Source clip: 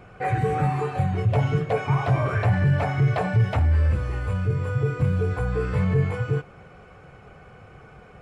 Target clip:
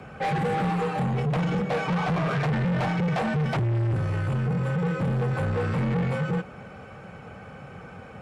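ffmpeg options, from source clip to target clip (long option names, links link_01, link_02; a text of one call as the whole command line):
ffmpeg -i in.wav -af "afreqshift=37,asoftclip=type=tanh:threshold=-27dB,volume=4.5dB" out.wav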